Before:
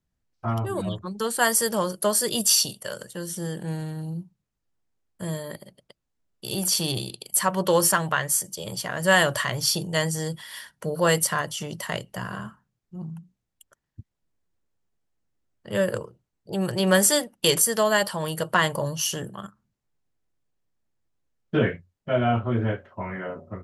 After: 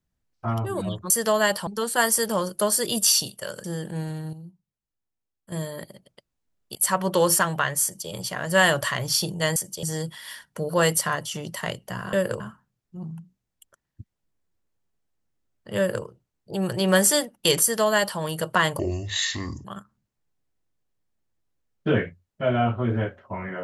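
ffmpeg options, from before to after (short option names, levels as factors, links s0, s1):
-filter_complex "[0:a]asplit=13[s0][s1][s2][s3][s4][s5][s6][s7][s8][s9][s10][s11][s12];[s0]atrim=end=1.102[s13];[s1]atrim=start=17.608:end=18.182[s14];[s2]atrim=start=1.098:end=3.072[s15];[s3]atrim=start=3.358:end=4.052[s16];[s4]atrim=start=4.048:end=5.242,asetpts=PTS-STARTPTS,volume=0.335[s17];[s5]atrim=start=5.238:end=6.472[s18];[s6]atrim=start=7.278:end=10.092[s19];[s7]atrim=start=8.358:end=8.632[s20];[s8]atrim=start=10.088:end=12.392[s21];[s9]atrim=start=15.758:end=16.032[s22];[s10]atrim=start=12.388:end=18.784[s23];[s11]atrim=start=18.78:end=19.32,asetpts=PTS-STARTPTS,asetrate=27783,aresample=44100[s24];[s12]atrim=start=19.316[s25];[s13][s14]acrossfade=d=0.004:c1=hsin:c2=hsin[s26];[s26][s15]acrossfade=d=0.004:c1=hsin:c2=hsin[s27];[s27][s16]acrossfade=d=0.004:c1=hsin:c2=hsin[s28];[s28][s17]acrossfade=d=0.004:c1=hsin:c2=hsin[s29];[s29][s18]acrossfade=d=0.004:c1=hsin:c2=hsin[s30];[s30][s19]acrossfade=d=0.004:c1=hsin:c2=hsin[s31];[s31][s20]acrossfade=d=0.004:c1=hsin:c2=hsin[s32];[s32][s21]acrossfade=d=0.004:c1=hsin:c2=hsin[s33];[s33][s22]acrossfade=d=0.004:c1=hsin:c2=hsin[s34];[s34][s23]acrossfade=d=0.004:c1=hsin:c2=hsin[s35];[s35][s24]acrossfade=d=0.004:c1=hsin:c2=hsin[s36];[s36][s25]acrossfade=d=0.004:c1=hsin:c2=hsin"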